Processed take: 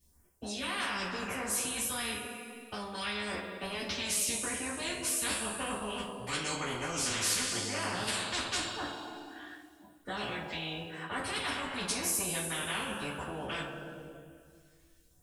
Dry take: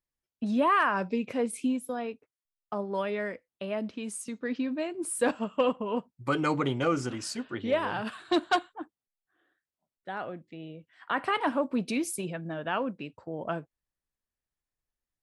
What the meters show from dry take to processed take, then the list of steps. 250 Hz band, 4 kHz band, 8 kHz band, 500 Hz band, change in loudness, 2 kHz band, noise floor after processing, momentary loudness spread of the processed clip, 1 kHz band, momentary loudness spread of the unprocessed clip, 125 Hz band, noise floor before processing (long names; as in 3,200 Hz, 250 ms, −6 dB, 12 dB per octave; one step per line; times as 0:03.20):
−9.5 dB, +6.0 dB, +9.0 dB, −9.5 dB, −3.0 dB, −1.0 dB, −64 dBFS, 13 LU, −7.0 dB, 13 LU, −4.5 dB, below −85 dBFS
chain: reversed playback
downward compressor, threshold −34 dBFS, peak gain reduction 13.5 dB
reversed playback
all-pass phaser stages 2, 0.93 Hz, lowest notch 430–3,700 Hz
on a send: flutter between parallel walls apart 8.3 metres, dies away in 0.21 s
on the sum: multi-voice chorus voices 2, 0.26 Hz, delay 13 ms, depth 2.2 ms
coupled-rooms reverb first 0.2 s, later 1.9 s, from −22 dB, DRR −9.5 dB
every bin compressed towards the loudest bin 4 to 1